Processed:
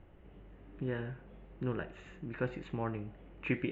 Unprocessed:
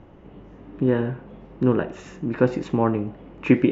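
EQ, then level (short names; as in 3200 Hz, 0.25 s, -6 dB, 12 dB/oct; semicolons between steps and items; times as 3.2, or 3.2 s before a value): ten-band EQ 125 Hz -6 dB, 250 Hz -10 dB, 500 Hz -5 dB, 1000 Hz -9 dB; dynamic EQ 420 Hz, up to -4 dB, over -41 dBFS, Q 0.74; running mean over 8 samples; -4.0 dB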